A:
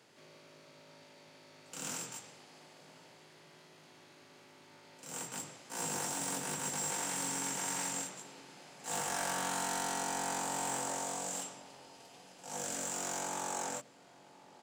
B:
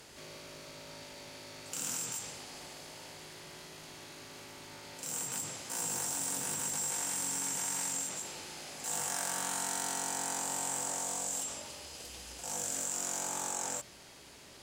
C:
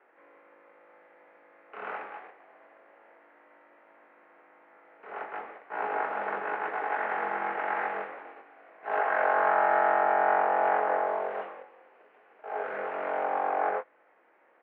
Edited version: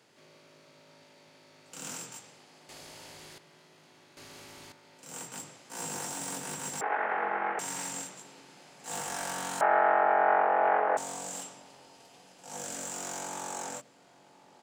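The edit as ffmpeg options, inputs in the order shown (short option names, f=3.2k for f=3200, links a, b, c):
-filter_complex "[1:a]asplit=2[a][b];[2:a]asplit=2[c][d];[0:a]asplit=5[e][f][g][h][i];[e]atrim=end=2.692[j];[a]atrim=start=2.688:end=3.382[k];[f]atrim=start=3.378:end=4.172[l];[b]atrim=start=4.168:end=4.722[m];[g]atrim=start=4.718:end=6.812[n];[c]atrim=start=6.808:end=7.592[o];[h]atrim=start=7.588:end=9.612[p];[d]atrim=start=9.608:end=10.972[q];[i]atrim=start=10.968[r];[j][k]acrossfade=d=0.004:c1=hsin:c2=hsin[s];[s][l]acrossfade=d=0.004:c1=hsin:c2=hsin[t];[t][m]acrossfade=d=0.004:c1=hsin:c2=hsin[u];[u][n]acrossfade=d=0.004:c1=hsin:c2=hsin[v];[v][o]acrossfade=d=0.004:c1=hsin:c2=hsin[w];[w][p]acrossfade=d=0.004:c1=hsin:c2=hsin[x];[x][q]acrossfade=d=0.004:c1=hsin:c2=hsin[y];[y][r]acrossfade=d=0.004:c1=hsin:c2=hsin"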